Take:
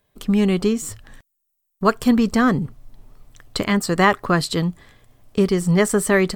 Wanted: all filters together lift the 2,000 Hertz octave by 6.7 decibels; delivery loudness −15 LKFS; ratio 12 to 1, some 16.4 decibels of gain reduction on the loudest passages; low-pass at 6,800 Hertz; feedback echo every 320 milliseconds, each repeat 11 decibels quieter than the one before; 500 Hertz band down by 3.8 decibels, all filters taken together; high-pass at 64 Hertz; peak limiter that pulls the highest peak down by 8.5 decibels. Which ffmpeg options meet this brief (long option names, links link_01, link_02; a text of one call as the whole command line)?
ffmpeg -i in.wav -af "highpass=64,lowpass=6800,equalizer=frequency=500:width_type=o:gain=-5.5,equalizer=frequency=2000:width_type=o:gain=8,acompressor=threshold=-24dB:ratio=12,alimiter=limit=-19.5dB:level=0:latency=1,aecho=1:1:320|640|960:0.282|0.0789|0.0221,volume=15.5dB" out.wav